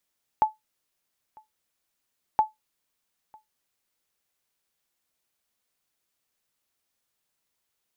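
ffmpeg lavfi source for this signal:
ffmpeg -f lavfi -i "aevalsrc='0.266*(sin(2*PI*865*mod(t,1.97))*exp(-6.91*mod(t,1.97)/0.16)+0.0355*sin(2*PI*865*max(mod(t,1.97)-0.95,0))*exp(-6.91*max(mod(t,1.97)-0.95,0)/0.16))':duration=3.94:sample_rate=44100" out.wav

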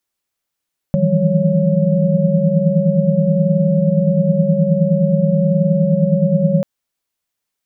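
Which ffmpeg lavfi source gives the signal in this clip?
ffmpeg -f lavfi -i "aevalsrc='0.126*(sin(2*PI*155.56*t)+sin(2*PI*164.81*t)+sin(2*PI*174.61*t)+sin(2*PI*196*t)+sin(2*PI*554.37*t))':duration=5.69:sample_rate=44100" out.wav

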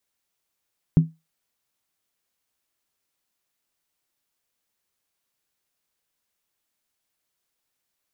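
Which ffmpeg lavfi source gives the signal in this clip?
ffmpeg -f lavfi -i "aevalsrc='0.422*pow(10,-3*t/0.22)*sin(2*PI*161*t)+0.106*pow(10,-3*t/0.174)*sin(2*PI*256.6*t)+0.0266*pow(10,-3*t/0.151)*sin(2*PI*343.9*t)+0.00668*pow(10,-3*t/0.145)*sin(2*PI*369.7*t)+0.00168*pow(10,-3*t/0.135)*sin(2*PI*427.1*t)':duration=0.63:sample_rate=44100" out.wav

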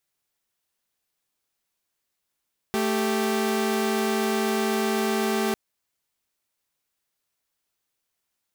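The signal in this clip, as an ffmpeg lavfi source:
ffmpeg -f lavfi -i "aevalsrc='0.075*((2*mod(220*t,1)-1)+(2*mod(392*t,1)-1))':duration=2.8:sample_rate=44100" out.wav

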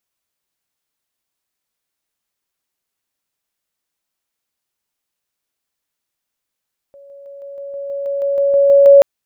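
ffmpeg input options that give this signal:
ffmpeg -f lavfi -i "aevalsrc='pow(10,(-38.5+3*floor(t/0.16))/20)*sin(2*PI*560*t)':duration=2.08:sample_rate=44100" out.wav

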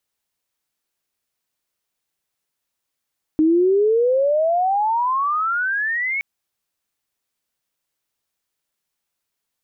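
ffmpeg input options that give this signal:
ffmpeg -f lavfi -i "aevalsrc='pow(10,(-12-8*t/2.82)/20)*sin(2*PI*306*2.82/(34.5*log(2)/12)*(exp(34.5*log(2)/12*t/2.82)-1))':duration=2.82:sample_rate=44100" out.wav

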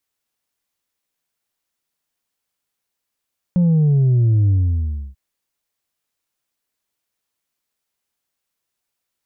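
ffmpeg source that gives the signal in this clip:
ffmpeg -f lavfi -i "aevalsrc='0.251*clip((1.59-t)/0.66,0,1)*tanh(1.33*sin(2*PI*180*1.59/log(65/180)*(exp(log(65/180)*t/1.59)-1)))/tanh(1.33)':duration=1.59:sample_rate=44100" out.wav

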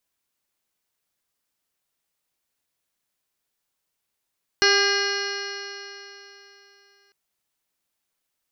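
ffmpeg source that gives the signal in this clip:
ffmpeg -f lavfi -i "aevalsrc='0.0891*pow(10,-3*t/3.25)*sin(2*PI*398.28*t)+0.0335*pow(10,-3*t/3.25)*sin(2*PI*798.23*t)+0.0398*pow(10,-3*t/3.25)*sin(2*PI*1201.5*t)+0.112*pow(10,-3*t/3.25)*sin(2*PI*1609.73*t)+0.0562*pow(10,-3*t/3.25)*sin(2*PI*2024.53*t)+0.0299*pow(10,-3*t/3.25)*sin(2*PI*2447.44*t)+0.0562*pow(10,-3*t/3.25)*sin(2*PI*2879.97*t)+0.01*pow(10,-3*t/3.25)*sin(2*PI*3323.58*t)+0.0112*pow(10,-3*t/3.25)*sin(2*PI*3779.65*t)+0.0891*pow(10,-3*t/3.25)*sin(2*PI*4249.48*t)+0.0282*pow(10,-3*t/3.25)*sin(2*PI*4734.32*t)+0.0631*pow(10,-3*t/3.25)*sin(2*PI*5235.33*t)+0.0447*pow(10,-3*t/3.25)*sin(2*PI*5753.62*t)':duration=2.5:sample_rate=44100" out.wav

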